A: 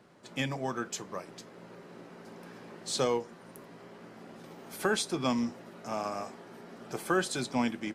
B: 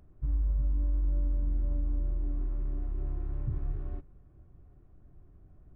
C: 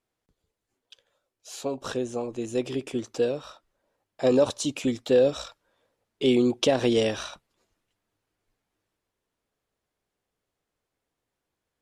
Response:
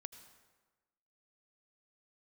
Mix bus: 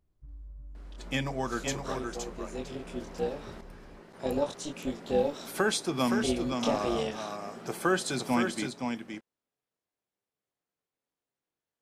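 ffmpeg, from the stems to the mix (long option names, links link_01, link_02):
-filter_complex "[0:a]adelay=750,volume=1.5dB,asplit=3[link_01][link_02][link_03];[link_01]atrim=end=3.61,asetpts=PTS-STARTPTS,afade=type=out:start_time=3.606:duration=0.004:curve=hsin[link_04];[link_02]atrim=start=3.61:end=4.13,asetpts=PTS-STARTPTS,volume=0[link_05];[link_03]atrim=start=4.13,asetpts=PTS-STARTPTS,afade=type=in:duration=0.004:curve=hsin[link_06];[link_04][link_05][link_06]concat=n=3:v=0:a=1,asplit=2[link_07][link_08];[link_08]volume=-5.5dB[link_09];[1:a]volume=-17.5dB[link_10];[2:a]highpass=120,flanger=delay=22.5:depth=2.6:speed=0.44,tremolo=f=300:d=0.667,volume=-3dB[link_11];[link_09]aecho=0:1:518:1[link_12];[link_07][link_10][link_11][link_12]amix=inputs=4:normalize=0"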